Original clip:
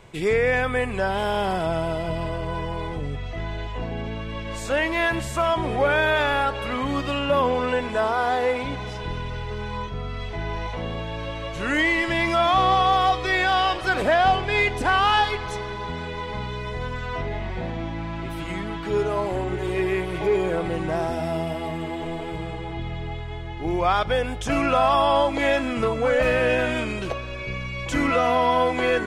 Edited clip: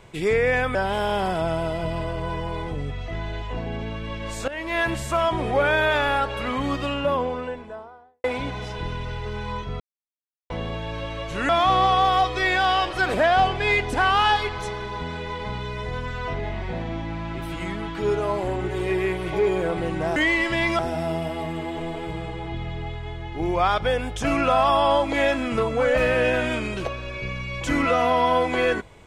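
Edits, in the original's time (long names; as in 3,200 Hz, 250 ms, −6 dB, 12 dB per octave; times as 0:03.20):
0:00.75–0:01.00: remove
0:04.73–0:05.10: fade in, from −16 dB
0:06.88–0:08.49: fade out and dull
0:10.05–0:10.75: silence
0:11.74–0:12.37: move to 0:21.04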